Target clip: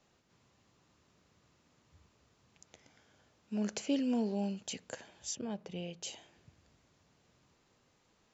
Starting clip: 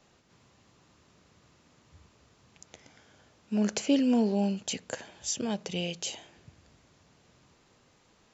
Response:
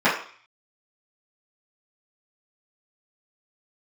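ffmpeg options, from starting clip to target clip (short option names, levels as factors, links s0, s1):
-filter_complex "[0:a]asettb=1/sr,asplit=3[s0][s1][s2];[s0]atrim=end=5.354[s3];[s1]atrim=start=5.35:end=6.03,asetpts=PTS-STARTPTS,afade=t=in:d=0.004:c=qsin,afade=t=out:st=0.676:d=0.004:c=qsin,lowpass=f=1500:p=1[s4];[s2]atrim=start=6.026[s5];[s3][s4]acrossfade=d=0.004:c1=hsin:c2=qsin[s6];[s6][s5]acrossfade=d=0.004:c1=qsin:c2=hsin,volume=0.422"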